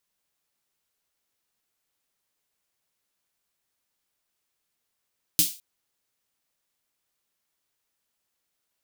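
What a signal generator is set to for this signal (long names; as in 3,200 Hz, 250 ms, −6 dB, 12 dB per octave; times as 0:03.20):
synth snare length 0.21 s, tones 170 Hz, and 300 Hz, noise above 3,100 Hz, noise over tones 12 dB, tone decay 0.17 s, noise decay 0.33 s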